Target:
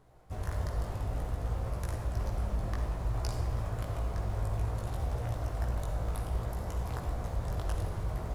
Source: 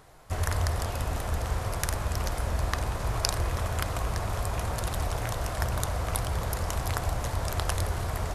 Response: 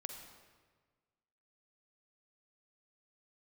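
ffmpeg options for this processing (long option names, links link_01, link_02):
-filter_complex "[0:a]tiltshelf=frequency=840:gain=5,asplit=2[link_01][link_02];[link_02]acrusher=samples=9:mix=1:aa=0.000001:lfo=1:lforange=14.4:lforate=4,volume=-9dB[link_03];[link_01][link_03]amix=inputs=2:normalize=0,flanger=delay=16.5:depth=2.7:speed=0.59[link_04];[1:a]atrim=start_sample=2205[link_05];[link_04][link_05]afir=irnorm=-1:irlink=0,volume=-5.5dB"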